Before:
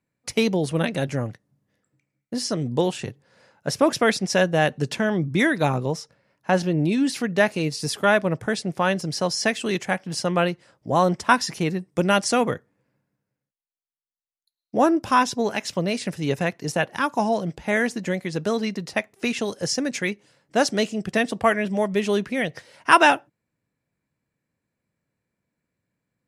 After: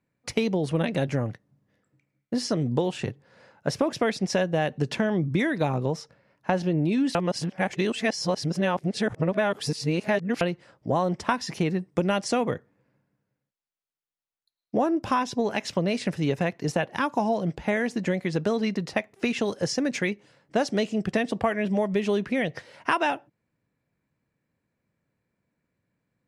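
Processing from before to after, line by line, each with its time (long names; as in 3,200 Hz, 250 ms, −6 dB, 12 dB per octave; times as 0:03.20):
0:07.15–0:10.41: reverse
whole clip: dynamic equaliser 1,400 Hz, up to −4 dB, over −36 dBFS, Q 2.1; downward compressor, threshold −23 dBFS; high-shelf EQ 5,800 Hz −12 dB; level +2.5 dB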